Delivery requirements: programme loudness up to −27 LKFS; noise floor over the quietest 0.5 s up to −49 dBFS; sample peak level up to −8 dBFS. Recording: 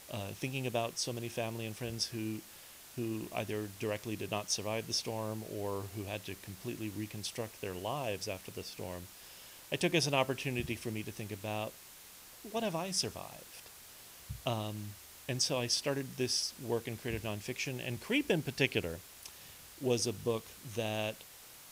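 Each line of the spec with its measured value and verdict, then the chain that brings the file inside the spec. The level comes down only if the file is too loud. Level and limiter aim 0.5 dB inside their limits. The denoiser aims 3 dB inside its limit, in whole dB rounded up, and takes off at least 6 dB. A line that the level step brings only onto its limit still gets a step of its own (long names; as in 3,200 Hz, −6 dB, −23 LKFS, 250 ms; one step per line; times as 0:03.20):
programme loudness −36.5 LKFS: in spec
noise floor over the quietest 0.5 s −54 dBFS: in spec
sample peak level −13.0 dBFS: in spec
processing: no processing needed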